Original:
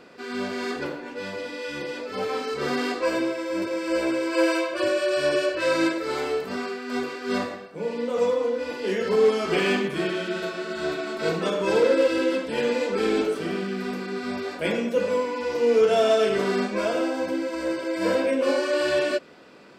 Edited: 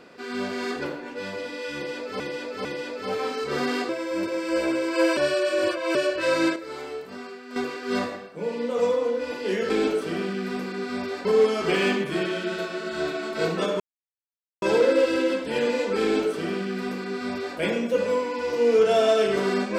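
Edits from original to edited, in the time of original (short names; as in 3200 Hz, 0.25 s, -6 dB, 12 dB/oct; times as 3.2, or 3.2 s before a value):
1.75–2.2 loop, 3 plays
2.99–3.28 cut
4.56–5.34 reverse
5.95–6.95 gain -8 dB
11.64 insert silence 0.82 s
13.04–14.59 copy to 9.09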